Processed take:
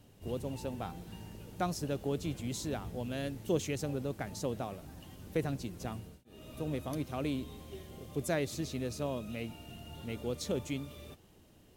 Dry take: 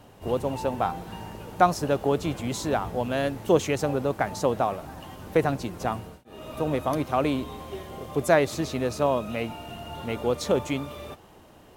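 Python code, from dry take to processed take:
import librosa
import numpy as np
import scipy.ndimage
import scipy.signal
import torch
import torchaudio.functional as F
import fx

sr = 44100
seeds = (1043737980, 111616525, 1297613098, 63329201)

y = fx.peak_eq(x, sr, hz=960.0, db=-12.5, octaves=2.1)
y = y * 10.0 ** (-5.5 / 20.0)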